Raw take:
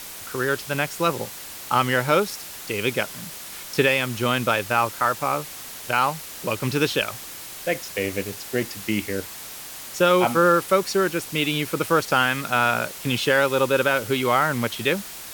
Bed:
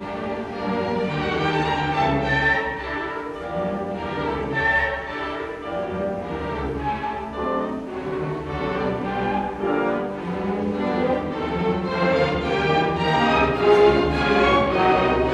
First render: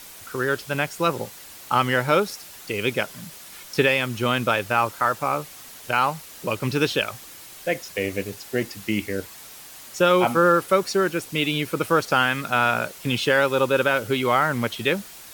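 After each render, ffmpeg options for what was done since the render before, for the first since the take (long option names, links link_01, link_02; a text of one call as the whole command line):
ffmpeg -i in.wav -af "afftdn=noise_reduction=6:noise_floor=-38" out.wav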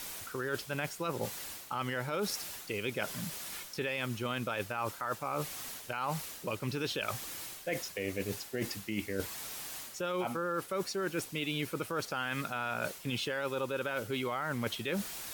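ffmpeg -i in.wav -af "alimiter=limit=-14.5dB:level=0:latency=1:release=54,areverse,acompressor=threshold=-32dB:ratio=6,areverse" out.wav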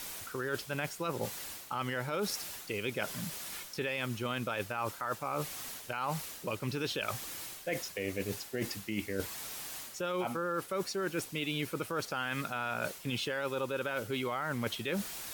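ffmpeg -i in.wav -af anull out.wav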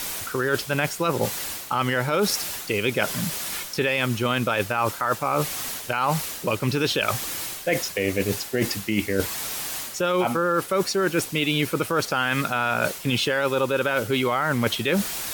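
ffmpeg -i in.wav -af "volume=12dB" out.wav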